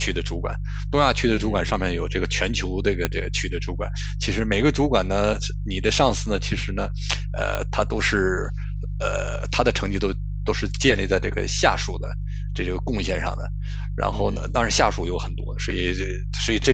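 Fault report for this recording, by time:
hum 50 Hz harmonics 3 -28 dBFS
3.05 pop -5 dBFS
7.55 pop -10 dBFS

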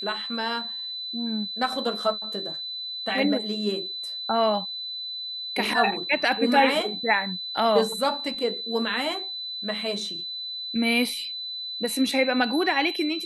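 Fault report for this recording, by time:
tone 4000 Hz -31 dBFS

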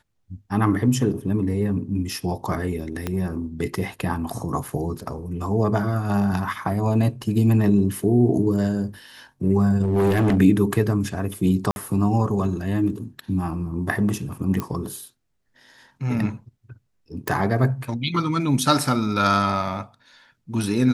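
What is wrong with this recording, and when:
3.07 pop -12 dBFS
9.83–10.38 clipped -15.5 dBFS
11.71–11.76 gap 51 ms
14.6 pop -13 dBFS
17.28 pop

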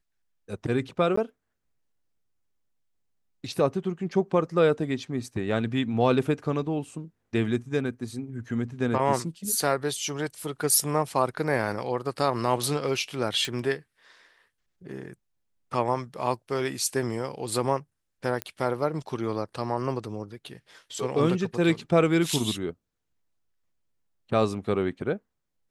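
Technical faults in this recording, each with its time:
1.16–1.17 gap 14 ms
13.45 pop -16 dBFS
18.42 pop -14 dBFS

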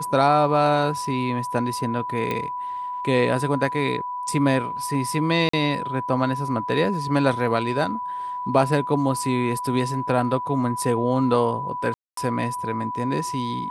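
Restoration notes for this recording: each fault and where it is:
tone 990 Hz -27 dBFS
2.31 pop -13 dBFS
5.49–5.53 gap 44 ms
11.94–12.17 gap 0.233 s

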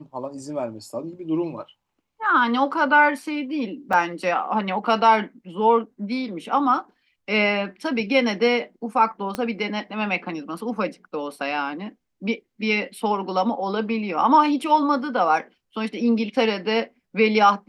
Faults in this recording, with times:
3.93 gap 3.6 ms
9.35 pop -13 dBFS

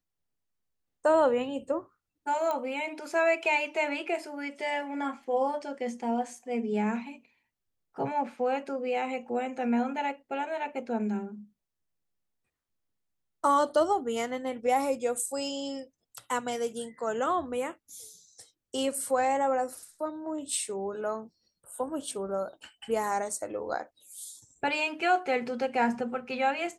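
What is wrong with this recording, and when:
2.51 pop -19 dBFS

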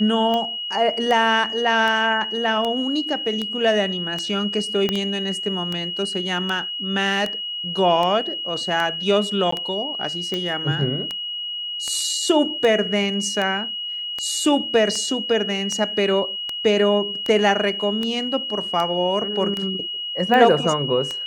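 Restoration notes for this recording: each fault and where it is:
tick 78 rpm -12 dBFS
tone 2900 Hz -26 dBFS
4.89 pop -8 dBFS
9.51–9.52 gap 14 ms

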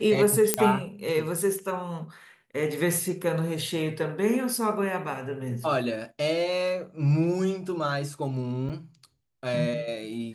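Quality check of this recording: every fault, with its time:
0.54 pop -4 dBFS
8.69–8.7 gap 6.7 ms

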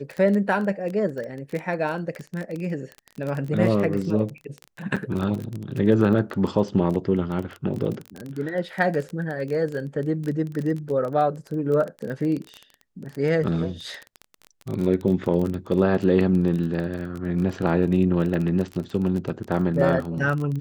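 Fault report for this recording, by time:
crackle 20/s -27 dBFS
4.96–4.97 gap 6.4 ms

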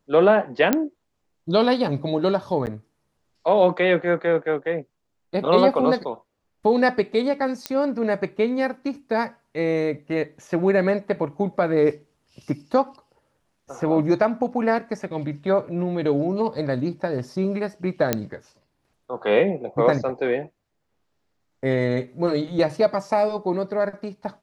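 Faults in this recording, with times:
0.73 pop -5 dBFS
2.66–2.67 gap 9.1 ms
7.66 pop -9 dBFS
18.13 pop -4 dBFS

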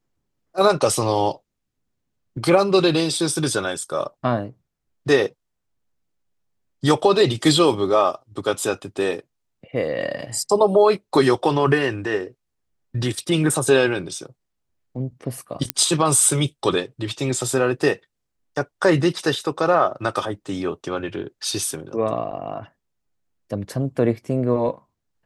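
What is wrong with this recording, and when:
15.7 pop -2 dBFS

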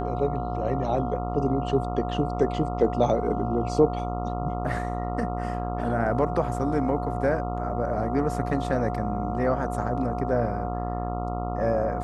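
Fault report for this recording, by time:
buzz 60 Hz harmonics 23 -31 dBFS
tone 720 Hz -33 dBFS

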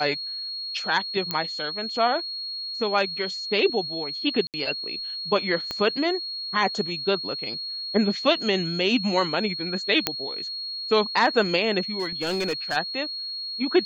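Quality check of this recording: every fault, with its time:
tone 4300 Hz -30 dBFS
1.31 pop -10 dBFS
4.47–4.54 gap 68 ms
5.71 pop -15 dBFS
10.07 pop -4 dBFS
11.99–12.77 clipped -21 dBFS

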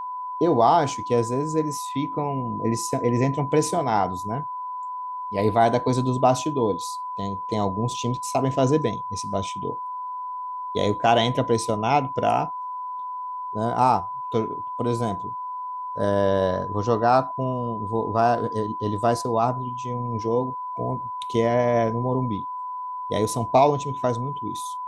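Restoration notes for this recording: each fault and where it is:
tone 1000 Hz -29 dBFS

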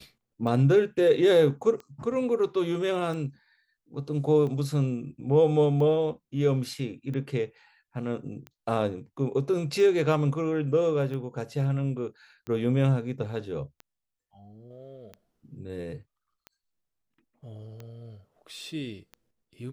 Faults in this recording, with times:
tick 45 rpm -27 dBFS

